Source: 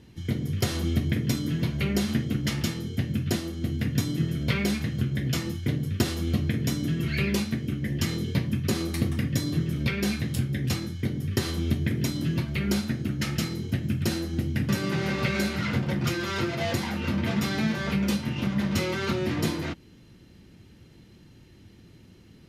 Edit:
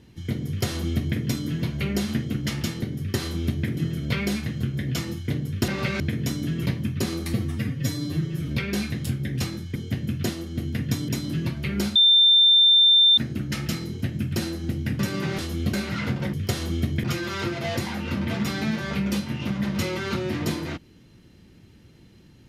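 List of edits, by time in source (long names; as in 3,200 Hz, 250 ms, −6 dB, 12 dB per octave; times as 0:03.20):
0:00.47–0:01.17: duplicate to 0:16.00
0:02.82–0:04.15: swap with 0:11.05–0:12.00
0:06.06–0:06.41: swap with 0:15.08–0:15.40
0:07.07–0:08.34: remove
0:09.01–0:09.78: time-stretch 1.5×
0:12.87: insert tone 3,580 Hz −12.5 dBFS 1.22 s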